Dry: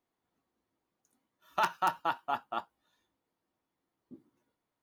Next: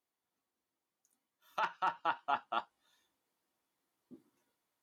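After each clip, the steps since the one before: treble ducked by the level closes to 2700 Hz, closed at -27 dBFS; tilt +2 dB/oct; vocal rider 0.5 s; gain -2.5 dB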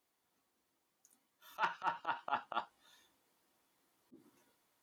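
auto swell 0.153 s; gain +7.5 dB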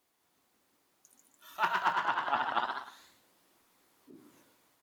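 feedback echo 0.127 s, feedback 26%, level -11.5 dB; echoes that change speed 0.203 s, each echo +1 st, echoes 3; gain +5.5 dB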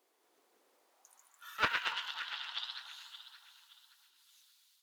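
high-pass sweep 410 Hz -> 3800 Hz, 0.62–2.13; echo with dull and thin repeats by turns 0.286 s, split 1100 Hz, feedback 56%, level -7 dB; Doppler distortion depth 0.21 ms

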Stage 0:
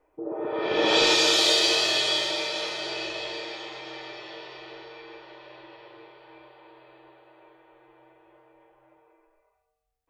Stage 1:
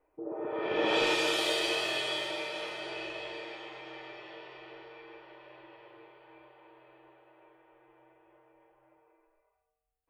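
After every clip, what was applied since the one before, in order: band shelf 5100 Hz -9.5 dB 1.2 oct; gain -5.5 dB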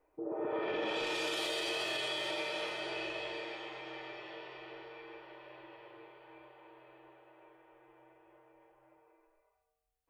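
limiter -27 dBFS, peak gain reduction 10.5 dB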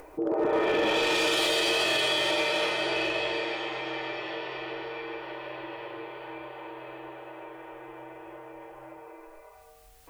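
in parallel at +1 dB: upward compressor, threshold -40 dBFS; on the sum: hard clip -24.5 dBFS, distortion -19 dB; gain +4.5 dB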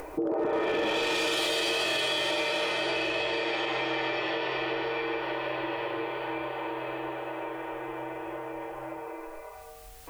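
limiter -25 dBFS, peak gain reduction 5 dB; compressor 2.5:1, threshold -35 dBFS, peak gain reduction 5.5 dB; gain +7.5 dB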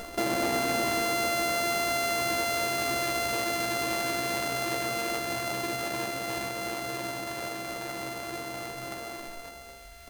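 sample sorter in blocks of 64 samples; doubler 15 ms -4.5 dB

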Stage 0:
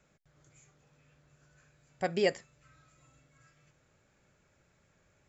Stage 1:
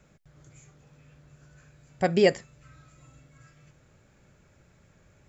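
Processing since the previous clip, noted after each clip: low shelf 320 Hz +7 dB; gain +5.5 dB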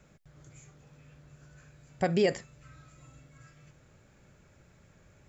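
limiter -16.5 dBFS, peak gain reduction 9 dB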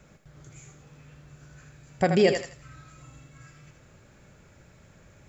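thinning echo 81 ms, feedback 29%, high-pass 420 Hz, level -6 dB; gain +5 dB

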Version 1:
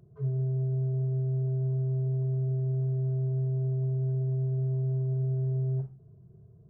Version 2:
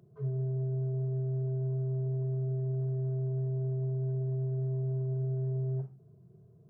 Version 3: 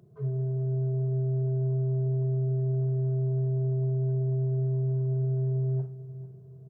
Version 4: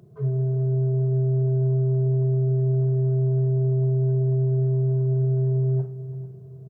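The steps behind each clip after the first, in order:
HPF 140 Hz
feedback echo 0.444 s, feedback 43%, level -16 dB; gain +3 dB
echo 0.339 s -16 dB; gain +6 dB

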